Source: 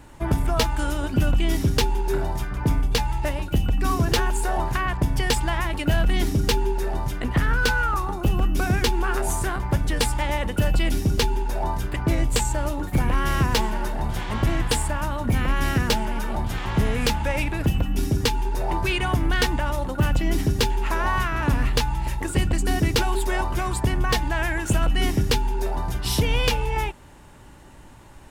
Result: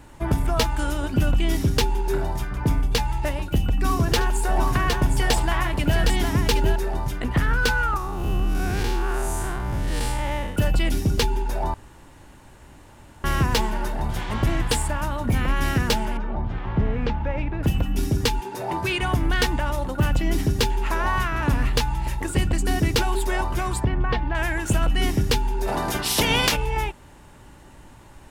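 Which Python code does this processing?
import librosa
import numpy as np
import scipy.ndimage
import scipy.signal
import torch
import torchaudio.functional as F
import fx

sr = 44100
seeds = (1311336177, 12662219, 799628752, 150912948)

y = fx.echo_multitap(x, sr, ms=(73, 762), db=(-17.0, -4.5), at=(3.73, 6.76))
y = fx.spec_blur(y, sr, span_ms=164.0, at=(7.97, 10.56))
y = fx.spacing_loss(y, sr, db_at_10k=38, at=(16.17, 17.63))
y = fx.highpass(y, sr, hz=fx.line((18.39, 150.0), (19.0, 67.0)), slope=24, at=(18.39, 19.0), fade=0.02)
y = fx.air_absorb(y, sr, metres=350.0, at=(23.84, 24.35))
y = fx.spec_clip(y, sr, under_db=22, at=(25.67, 26.55), fade=0.02)
y = fx.edit(y, sr, fx.room_tone_fill(start_s=11.74, length_s=1.5), tone=tone)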